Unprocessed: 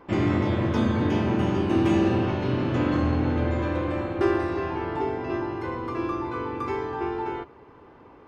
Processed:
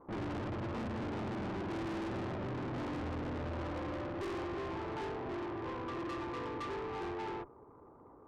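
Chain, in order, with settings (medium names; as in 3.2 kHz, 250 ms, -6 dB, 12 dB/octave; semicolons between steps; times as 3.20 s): elliptic low-pass 1.3 kHz; valve stage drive 37 dB, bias 0.4; upward expansion 1.5:1, over -48 dBFS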